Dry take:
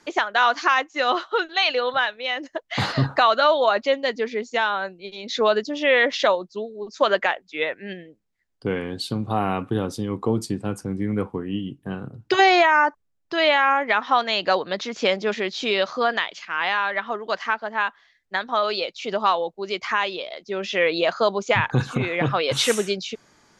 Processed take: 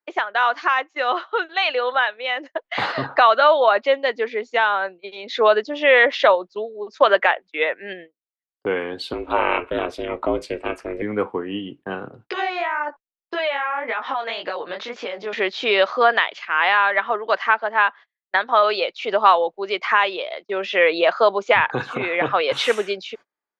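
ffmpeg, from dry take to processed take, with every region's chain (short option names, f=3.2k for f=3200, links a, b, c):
-filter_complex "[0:a]asettb=1/sr,asplit=3[a][b][c];[a]atrim=end=9.134[d];[b]atrim=start=9.13:end=11.02,asetpts=PTS-STARTPTS,afade=t=in:d=0.004:c=qsin,afade=t=out:st=1.886:d=0.004:c=qsin,equalizer=f=2.4k:w=2:g=12,aeval=exprs='val(0)*sin(2*PI*170*n/s)':c=same[e];[c]atrim=start=11.016[f];[d][e]acrossfade=d=0.004:c1=hsin:c2=qsin[g];[g][f]acrossfade=d=0.004:c1=qsin:c2=hsin,asettb=1/sr,asplit=3[h][i][j];[h]atrim=end=12.294[k];[i]atrim=start=12.29:end=15.33,asetpts=PTS-STARTPTS,afade=t=in:d=0.004:c=qsin,afade=t=out:st=3.036:d=0.004:c=qsin,acompressor=threshold=-27dB:ratio=5:attack=3.2:release=140:knee=1:detection=peak,flanger=delay=16.5:depth=7.7:speed=1.8[l];[j]atrim=start=15.326[m];[k][l]acrossfade=d=0.004:c1=hsin:c2=qsin[n];[n][m]acrossfade=d=0.004:c1=qsin:c2=hsin,dynaudnorm=f=670:g=5:m=11dB,agate=range=-32dB:threshold=-35dB:ratio=16:detection=peak,acrossover=split=340 3500:gain=0.126 1 0.141[o][p][q];[o][p][q]amix=inputs=3:normalize=0"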